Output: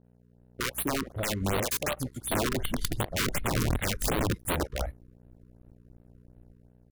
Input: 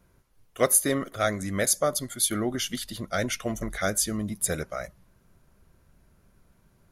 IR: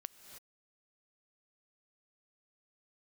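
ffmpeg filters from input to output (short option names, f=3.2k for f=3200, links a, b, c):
-filter_complex "[0:a]afwtdn=0.0355,asubboost=boost=9:cutoff=68,acompressor=threshold=-27dB:ratio=16,acrossover=split=520[a][b];[b]adelay=40[c];[a][c]amix=inputs=2:normalize=0,aeval=exprs='(mod(25.1*val(0)+1,2)-1)/25.1':c=same,aeval=exprs='val(0)+0.00251*(sin(2*PI*60*n/s)+sin(2*PI*2*60*n/s)/2+sin(2*PI*3*60*n/s)/3+sin(2*PI*4*60*n/s)/4+sin(2*PI*5*60*n/s)/5)':c=same,aeval=exprs='sgn(val(0))*max(abs(val(0))-0.002,0)':c=same,dynaudnorm=f=160:g=7:m=4.5dB,afftfilt=real='re*(1-between(b*sr/1024,650*pow(6500/650,0.5+0.5*sin(2*PI*2.7*pts/sr))/1.41,650*pow(6500/650,0.5+0.5*sin(2*PI*2.7*pts/sr))*1.41))':imag='im*(1-between(b*sr/1024,650*pow(6500/650,0.5+0.5*sin(2*PI*2.7*pts/sr))/1.41,650*pow(6500/650,0.5+0.5*sin(2*PI*2.7*pts/sr))*1.41))':win_size=1024:overlap=0.75,volume=2dB"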